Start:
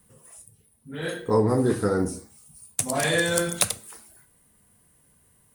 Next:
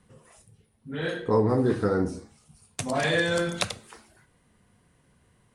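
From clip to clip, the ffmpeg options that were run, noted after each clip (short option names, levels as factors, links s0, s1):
-filter_complex "[0:a]lowpass=4700,asplit=2[s0][s1];[s1]acompressor=threshold=0.0282:ratio=6,volume=0.891[s2];[s0][s2]amix=inputs=2:normalize=0,volume=0.708"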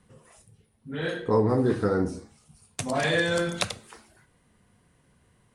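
-af anull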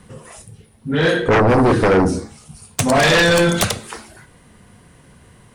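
-af "aeval=exprs='0.335*sin(PI/2*3.98*val(0)/0.335)':c=same"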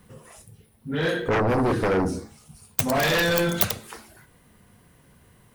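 -af "aexciter=amount=6.7:drive=6.2:freq=12000,volume=0.376"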